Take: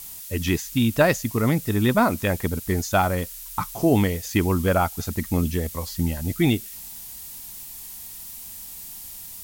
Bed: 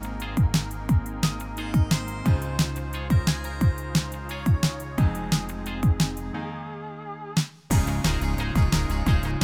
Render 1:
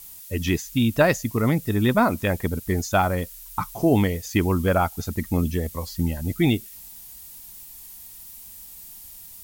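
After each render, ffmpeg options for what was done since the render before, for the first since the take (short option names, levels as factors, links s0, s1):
-af "afftdn=nr=6:nf=-39"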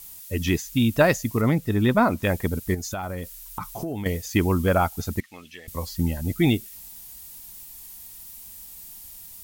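-filter_complex "[0:a]asettb=1/sr,asplit=3[s0][s1][s2];[s0]atrim=end=1.414[s3];[s1]atrim=start=1.41:end=2.23,asetpts=PTS-STARTPTS,afade=t=in:d=0.004:c=qsin,afade=t=out:st=0.816:d=0.004:c=qsin,equalizer=f=13000:w=0.3:g=-6.5[s4];[s2]atrim=start=2.226[s5];[s3][s4]acrossfade=d=0.004:c1=hsin:c2=qsin[s6];[s6][s5]acrossfade=d=0.004:c1=qsin:c2=hsin,asettb=1/sr,asplit=3[s7][s8][s9];[s7]atrim=end=2.744[s10];[s8]atrim=start=2.74:end=4.06,asetpts=PTS-STARTPTS,afade=t=in:d=0.004:c=qsin,afade=t=out:st=1.316:d=0.004:c=qsin,acompressor=threshold=0.0501:ratio=10:attack=3.2:release=140:knee=1:detection=peak[s11];[s9]atrim=start=4.056[s12];[s10][s11]acrossfade=d=0.004:c1=hsin:c2=qsin[s13];[s13][s12]acrossfade=d=0.004:c1=qsin:c2=hsin,asettb=1/sr,asplit=3[s14][s15][s16];[s14]atrim=end=5.204[s17];[s15]atrim=start=5.2:end=5.68,asetpts=PTS-STARTPTS,afade=t=in:d=0.004:c=qsin,afade=t=out:st=0.476:d=0.004:c=qsin,bandpass=f=2600:t=q:w=1.4[s18];[s16]atrim=start=5.676[s19];[s17][s18]acrossfade=d=0.004:c1=hsin:c2=qsin[s20];[s20][s19]acrossfade=d=0.004:c1=qsin:c2=hsin"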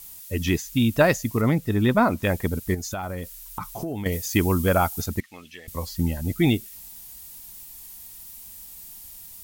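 -filter_complex "[0:a]asettb=1/sr,asplit=3[s0][s1][s2];[s0]atrim=end=4.124[s3];[s1]atrim=start=4.12:end=5.06,asetpts=PTS-STARTPTS,afade=t=in:d=0.004:c=qsin,afade=t=out:st=0.936:d=0.004:c=qsin,highshelf=f=5300:g=7.5[s4];[s2]atrim=start=5.056[s5];[s3][s4]acrossfade=d=0.004:c1=hsin:c2=qsin[s6];[s6][s5]acrossfade=d=0.004:c1=qsin:c2=hsin"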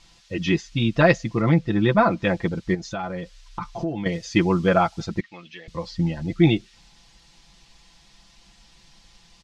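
-af "lowpass=f=5000:w=0.5412,lowpass=f=5000:w=1.3066,aecho=1:1:5.9:0.78"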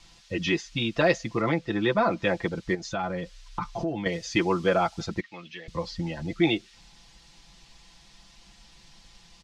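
-filter_complex "[0:a]acrossover=split=330|500|3100[s0][s1][s2][s3];[s0]acompressor=threshold=0.0251:ratio=6[s4];[s2]alimiter=limit=0.119:level=0:latency=1:release=22[s5];[s4][s1][s5][s3]amix=inputs=4:normalize=0"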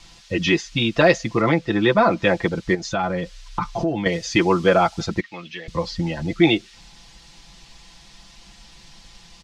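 -af "volume=2.24,alimiter=limit=0.708:level=0:latency=1"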